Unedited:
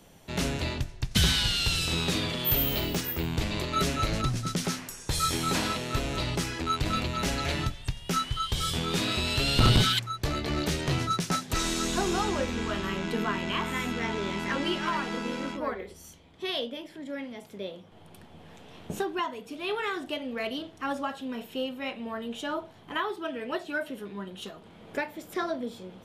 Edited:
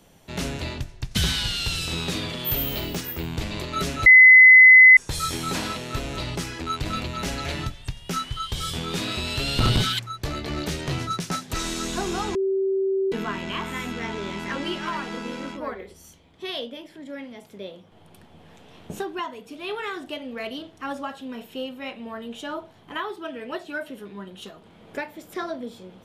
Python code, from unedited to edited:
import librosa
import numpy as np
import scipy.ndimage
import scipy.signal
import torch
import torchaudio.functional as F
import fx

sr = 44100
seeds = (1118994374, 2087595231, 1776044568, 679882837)

y = fx.edit(x, sr, fx.bleep(start_s=4.06, length_s=0.91, hz=2030.0, db=-6.5),
    fx.bleep(start_s=12.35, length_s=0.77, hz=386.0, db=-20.0), tone=tone)